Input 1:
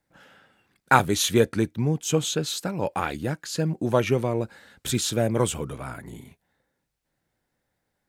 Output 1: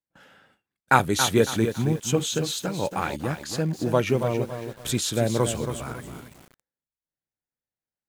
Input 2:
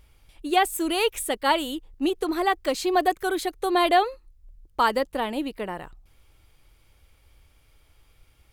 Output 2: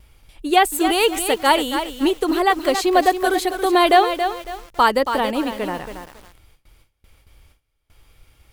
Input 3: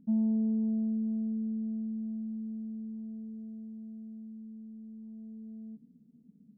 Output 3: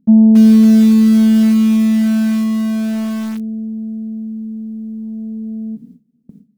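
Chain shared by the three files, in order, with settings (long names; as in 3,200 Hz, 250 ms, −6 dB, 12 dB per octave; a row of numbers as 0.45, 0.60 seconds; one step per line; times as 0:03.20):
noise gate with hold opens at −48 dBFS
feedback echo at a low word length 277 ms, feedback 35%, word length 7 bits, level −8 dB
normalise the peak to −1.5 dBFS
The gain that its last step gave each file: −0.5, +6.0, +20.5 decibels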